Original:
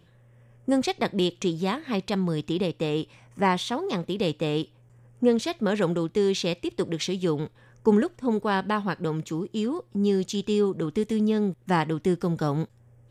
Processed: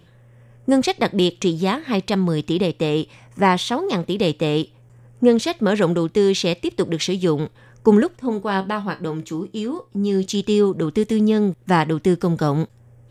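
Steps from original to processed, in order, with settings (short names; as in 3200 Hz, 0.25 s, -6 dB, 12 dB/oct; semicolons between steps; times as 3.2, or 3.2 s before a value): 8.17–10.26 resonator 64 Hz, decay 0.19 s, harmonics all, mix 70%; gain +6.5 dB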